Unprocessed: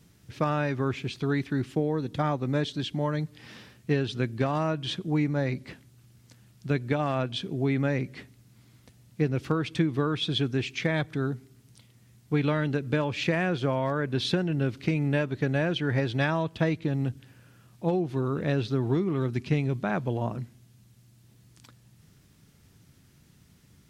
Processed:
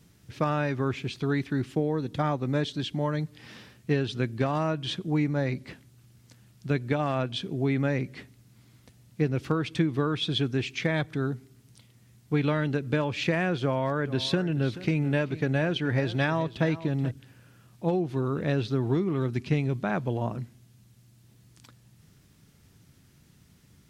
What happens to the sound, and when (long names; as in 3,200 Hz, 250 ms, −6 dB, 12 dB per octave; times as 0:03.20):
0:13.62–0:17.11: single-tap delay 430 ms −15.5 dB